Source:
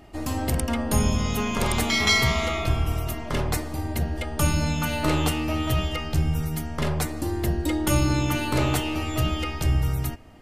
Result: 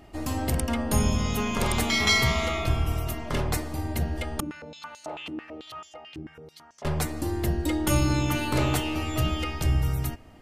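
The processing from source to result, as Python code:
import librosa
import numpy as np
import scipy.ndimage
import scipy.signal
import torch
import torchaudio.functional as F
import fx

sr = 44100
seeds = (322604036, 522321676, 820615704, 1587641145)

y = fx.filter_held_bandpass(x, sr, hz=9.1, low_hz=300.0, high_hz=6400.0, at=(4.4, 6.85))
y = y * librosa.db_to_amplitude(-1.5)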